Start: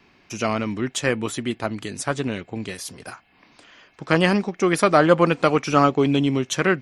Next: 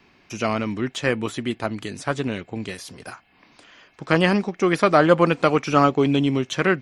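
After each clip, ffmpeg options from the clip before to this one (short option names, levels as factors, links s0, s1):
-filter_complex "[0:a]acrossover=split=4900[s0][s1];[s1]acompressor=threshold=0.01:ratio=4:attack=1:release=60[s2];[s0][s2]amix=inputs=2:normalize=0"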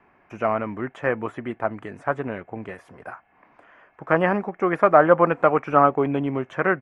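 -af "firequalizer=gain_entry='entry(260,0);entry(650,9);entry(1700,5);entry(4100,-23);entry(8100,-16);entry(12000,-18)':delay=0.05:min_phase=1,volume=0.531"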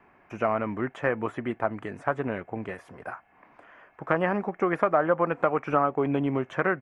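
-af "acompressor=threshold=0.0891:ratio=3"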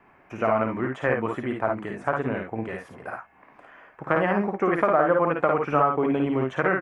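-af "aecho=1:1:54|69:0.668|0.335,volume=1.12"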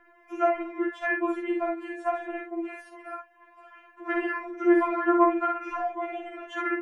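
-af "afftfilt=real='re*4*eq(mod(b,16),0)':imag='im*4*eq(mod(b,16),0)':win_size=2048:overlap=0.75"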